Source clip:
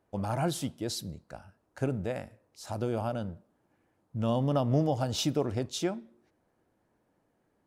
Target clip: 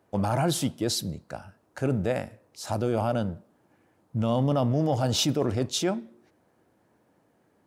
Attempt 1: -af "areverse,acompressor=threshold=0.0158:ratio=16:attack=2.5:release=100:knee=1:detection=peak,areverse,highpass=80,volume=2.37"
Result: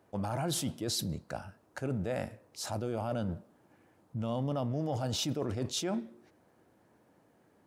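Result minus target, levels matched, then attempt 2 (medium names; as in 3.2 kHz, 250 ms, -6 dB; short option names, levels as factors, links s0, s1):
compression: peak gain reduction +9 dB
-af "areverse,acompressor=threshold=0.0473:ratio=16:attack=2.5:release=100:knee=1:detection=peak,areverse,highpass=80,volume=2.37"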